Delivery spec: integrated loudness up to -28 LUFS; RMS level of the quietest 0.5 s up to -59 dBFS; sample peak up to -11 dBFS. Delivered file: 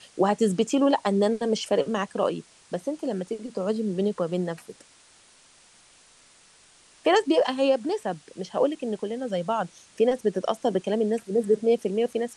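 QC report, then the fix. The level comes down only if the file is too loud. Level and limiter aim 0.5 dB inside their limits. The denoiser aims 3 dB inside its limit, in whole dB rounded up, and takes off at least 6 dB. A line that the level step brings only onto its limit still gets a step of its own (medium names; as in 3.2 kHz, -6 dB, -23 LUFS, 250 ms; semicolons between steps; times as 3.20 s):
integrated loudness -26.0 LUFS: fail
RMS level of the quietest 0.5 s -56 dBFS: fail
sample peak -10.0 dBFS: fail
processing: noise reduction 6 dB, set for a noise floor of -56 dBFS; trim -2.5 dB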